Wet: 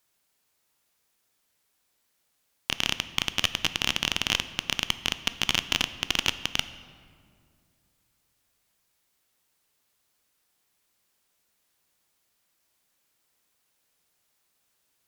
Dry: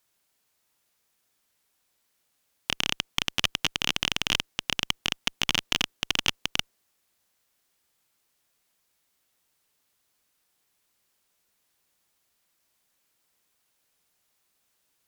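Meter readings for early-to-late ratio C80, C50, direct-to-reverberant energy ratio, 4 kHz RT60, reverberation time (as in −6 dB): 15.0 dB, 13.5 dB, 12.0 dB, 1.3 s, 2.2 s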